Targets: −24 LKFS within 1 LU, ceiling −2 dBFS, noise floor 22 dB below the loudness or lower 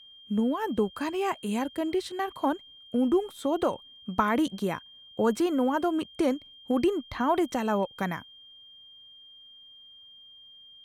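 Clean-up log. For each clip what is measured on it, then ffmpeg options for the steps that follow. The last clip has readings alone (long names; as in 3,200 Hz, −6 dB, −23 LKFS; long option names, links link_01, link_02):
interfering tone 3,200 Hz; level of the tone −49 dBFS; integrated loudness −28.5 LKFS; sample peak −9.5 dBFS; target loudness −24.0 LKFS
→ -af "bandreject=frequency=3200:width=30"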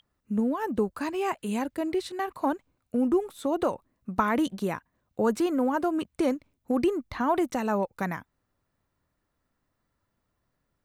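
interfering tone none found; integrated loudness −28.5 LKFS; sample peak −9.5 dBFS; target loudness −24.0 LKFS
→ -af "volume=4.5dB"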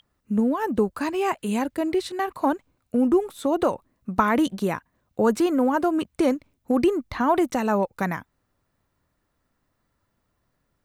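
integrated loudness −24.0 LKFS; sample peak −5.0 dBFS; background noise floor −74 dBFS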